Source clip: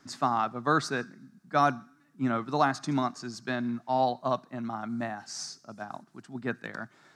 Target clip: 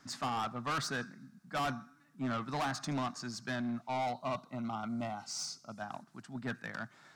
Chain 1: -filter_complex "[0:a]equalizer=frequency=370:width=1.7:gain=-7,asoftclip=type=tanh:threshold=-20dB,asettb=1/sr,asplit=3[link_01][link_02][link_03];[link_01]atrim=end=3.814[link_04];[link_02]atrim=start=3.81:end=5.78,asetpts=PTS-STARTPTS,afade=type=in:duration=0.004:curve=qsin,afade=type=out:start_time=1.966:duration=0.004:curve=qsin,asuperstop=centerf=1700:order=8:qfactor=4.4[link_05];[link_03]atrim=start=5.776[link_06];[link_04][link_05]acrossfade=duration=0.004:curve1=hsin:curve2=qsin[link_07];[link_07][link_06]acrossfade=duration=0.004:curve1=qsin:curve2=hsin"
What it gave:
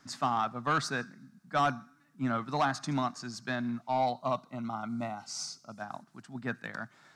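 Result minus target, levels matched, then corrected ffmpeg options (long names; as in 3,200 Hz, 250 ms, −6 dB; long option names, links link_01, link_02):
soft clipping: distortion −9 dB
-filter_complex "[0:a]equalizer=frequency=370:width=1.7:gain=-7,asoftclip=type=tanh:threshold=-31dB,asettb=1/sr,asplit=3[link_01][link_02][link_03];[link_01]atrim=end=3.814[link_04];[link_02]atrim=start=3.81:end=5.78,asetpts=PTS-STARTPTS,afade=type=in:duration=0.004:curve=qsin,afade=type=out:start_time=1.966:duration=0.004:curve=qsin,asuperstop=centerf=1700:order=8:qfactor=4.4[link_05];[link_03]atrim=start=5.776[link_06];[link_04][link_05]acrossfade=duration=0.004:curve1=hsin:curve2=qsin[link_07];[link_07][link_06]acrossfade=duration=0.004:curve1=qsin:curve2=hsin"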